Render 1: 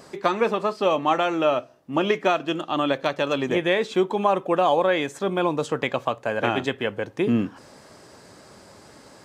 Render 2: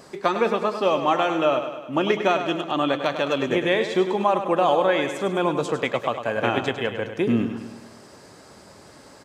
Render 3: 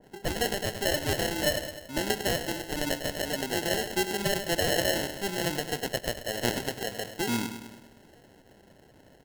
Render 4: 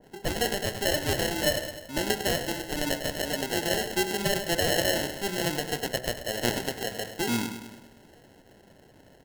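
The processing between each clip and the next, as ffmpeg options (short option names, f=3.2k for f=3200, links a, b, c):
-af "aecho=1:1:102|204|306|408|510|612|714:0.355|0.202|0.115|0.0657|0.0375|0.0213|0.0122"
-af "acrusher=samples=37:mix=1:aa=0.000001,adynamicequalizer=threshold=0.0158:dfrequency=1800:dqfactor=0.7:tfrequency=1800:tqfactor=0.7:attack=5:release=100:ratio=0.375:range=3.5:mode=boostabove:tftype=highshelf,volume=-9dB"
-af "bandreject=f=63.79:t=h:w=4,bandreject=f=127.58:t=h:w=4,bandreject=f=191.37:t=h:w=4,bandreject=f=255.16:t=h:w=4,bandreject=f=318.95:t=h:w=4,bandreject=f=382.74:t=h:w=4,bandreject=f=446.53:t=h:w=4,bandreject=f=510.32:t=h:w=4,bandreject=f=574.11:t=h:w=4,bandreject=f=637.9:t=h:w=4,bandreject=f=701.69:t=h:w=4,bandreject=f=765.48:t=h:w=4,bandreject=f=829.27:t=h:w=4,bandreject=f=893.06:t=h:w=4,bandreject=f=956.85:t=h:w=4,bandreject=f=1.02064k:t=h:w=4,bandreject=f=1.08443k:t=h:w=4,bandreject=f=1.14822k:t=h:w=4,bandreject=f=1.21201k:t=h:w=4,bandreject=f=1.2758k:t=h:w=4,bandreject=f=1.33959k:t=h:w=4,bandreject=f=1.40338k:t=h:w=4,bandreject=f=1.46717k:t=h:w=4,bandreject=f=1.53096k:t=h:w=4,bandreject=f=1.59475k:t=h:w=4,bandreject=f=1.65854k:t=h:w=4,bandreject=f=1.72233k:t=h:w=4,bandreject=f=1.78612k:t=h:w=4,bandreject=f=1.84991k:t=h:w=4,bandreject=f=1.9137k:t=h:w=4,bandreject=f=1.97749k:t=h:w=4,bandreject=f=2.04128k:t=h:w=4,bandreject=f=2.10507k:t=h:w=4,volume=1.5dB"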